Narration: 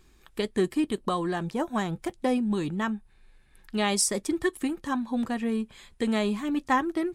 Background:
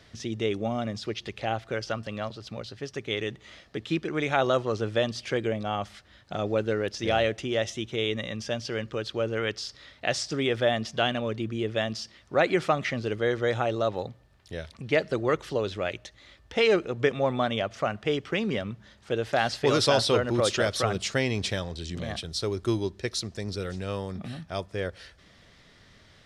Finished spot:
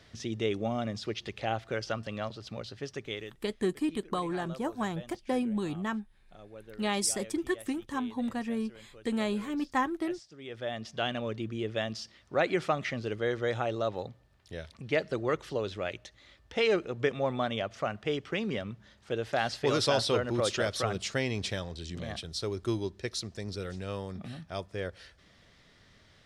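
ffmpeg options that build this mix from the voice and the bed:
-filter_complex "[0:a]adelay=3050,volume=0.596[s0];[1:a]volume=5.62,afade=t=out:st=2.88:d=0.52:silence=0.105925,afade=t=in:st=10.37:d=0.84:silence=0.133352[s1];[s0][s1]amix=inputs=2:normalize=0"

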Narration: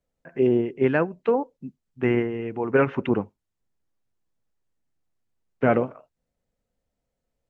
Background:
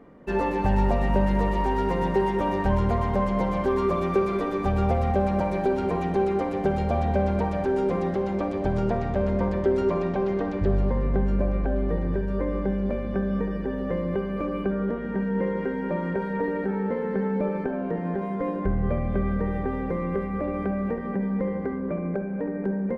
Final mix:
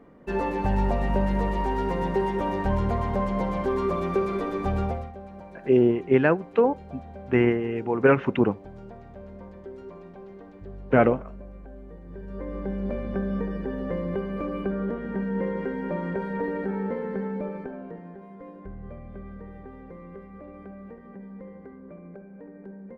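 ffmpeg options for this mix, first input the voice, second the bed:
-filter_complex "[0:a]adelay=5300,volume=1.19[s0];[1:a]volume=5.31,afade=t=out:st=4.76:d=0.35:silence=0.149624,afade=t=in:st=12.05:d=0.94:silence=0.149624,afade=t=out:st=16.83:d=1.31:silence=0.211349[s1];[s0][s1]amix=inputs=2:normalize=0"

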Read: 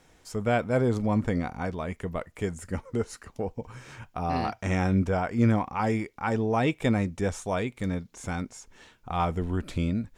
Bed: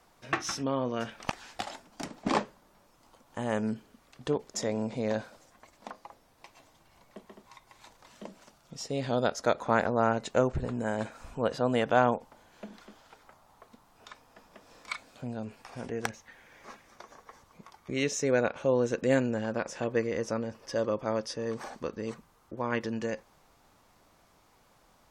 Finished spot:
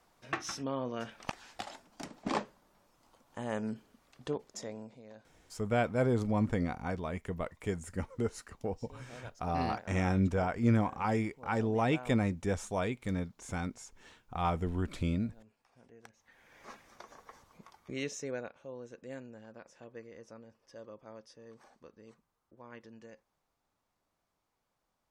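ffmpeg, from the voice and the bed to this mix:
-filter_complex "[0:a]adelay=5250,volume=0.596[s0];[1:a]volume=5.62,afade=t=out:st=4.25:d=0.77:silence=0.141254,afade=t=in:st=16.13:d=0.55:silence=0.0944061,afade=t=out:st=17.34:d=1.23:silence=0.133352[s1];[s0][s1]amix=inputs=2:normalize=0"

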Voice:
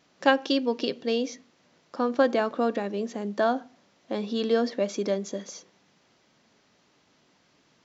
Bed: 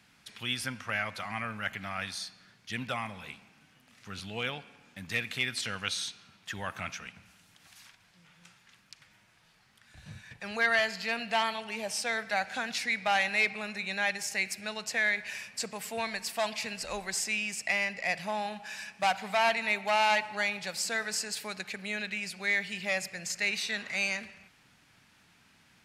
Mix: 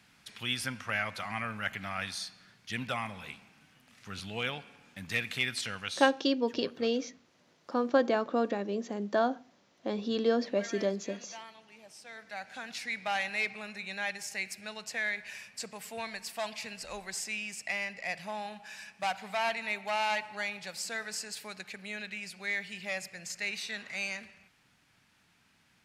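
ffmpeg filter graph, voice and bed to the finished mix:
-filter_complex "[0:a]adelay=5750,volume=0.668[s0];[1:a]volume=4.73,afade=t=out:st=5.48:d=0.91:silence=0.11885,afade=t=in:st=12.03:d=0.94:silence=0.211349[s1];[s0][s1]amix=inputs=2:normalize=0"

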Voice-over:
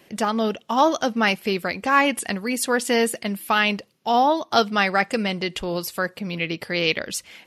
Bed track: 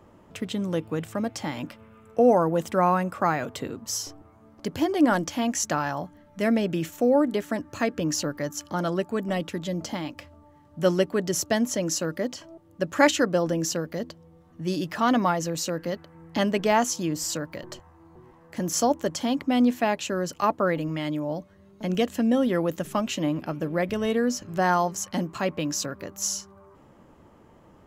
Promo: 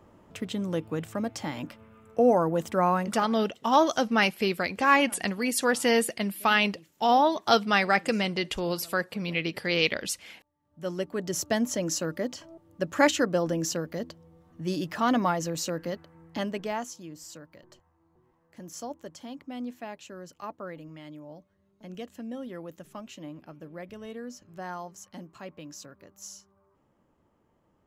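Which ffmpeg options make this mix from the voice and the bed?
-filter_complex "[0:a]adelay=2950,volume=0.708[s0];[1:a]volume=11.2,afade=t=out:st=2.99:d=0.29:silence=0.0668344,afade=t=in:st=10.58:d=0.95:silence=0.0668344,afade=t=out:st=15.76:d=1.23:silence=0.223872[s1];[s0][s1]amix=inputs=2:normalize=0"

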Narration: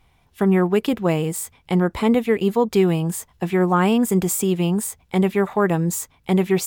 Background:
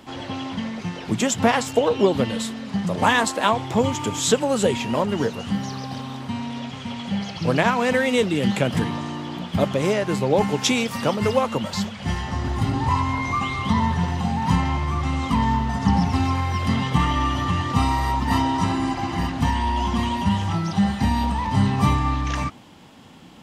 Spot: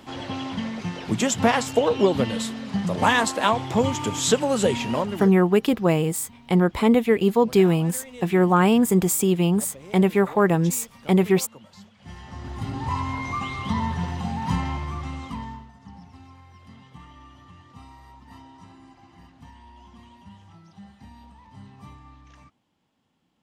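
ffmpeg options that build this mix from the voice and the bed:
-filter_complex "[0:a]adelay=4800,volume=1[s0];[1:a]volume=6.31,afade=t=out:st=4.9:d=0.49:silence=0.0891251,afade=t=in:st=11.94:d=1.12:silence=0.141254,afade=t=out:st=14.67:d=1.05:silence=0.0891251[s1];[s0][s1]amix=inputs=2:normalize=0"

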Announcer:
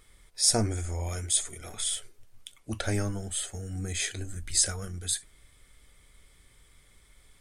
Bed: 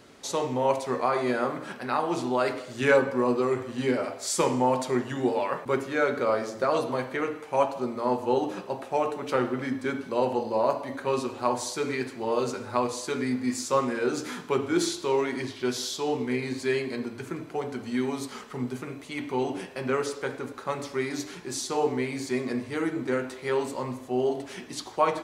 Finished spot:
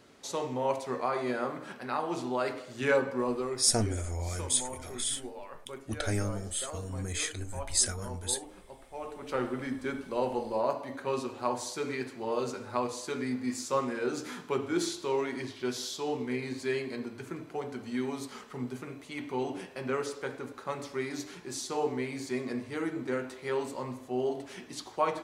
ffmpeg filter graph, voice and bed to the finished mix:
-filter_complex "[0:a]adelay=3200,volume=0.794[s0];[1:a]volume=2.24,afade=t=out:st=3.19:d=0.71:silence=0.251189,afade=t=in:st=8.93:d=0.54:silence=0.237137[s1];[s0][s1]amix=inputs=2:normalize=0"

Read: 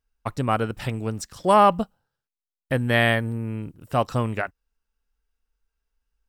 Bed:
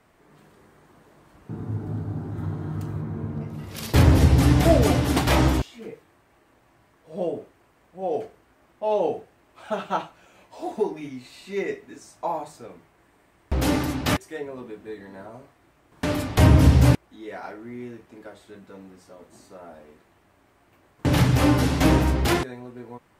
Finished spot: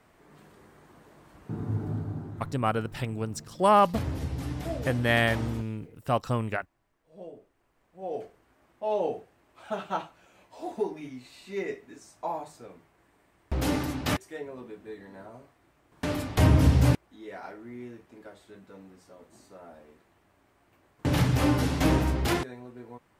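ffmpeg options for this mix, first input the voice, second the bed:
-filter_complex "[0:a]adelay=2150,volume=0.631[s0];[1:a]volume=3.55,afade=t=out:st=1.81:d=0.77:silence=0.158489,afade=t=in:st=7.42:d=1.11:silence=0.266073[s1];[s0][s1]amix=inputs=2:normalize=0"

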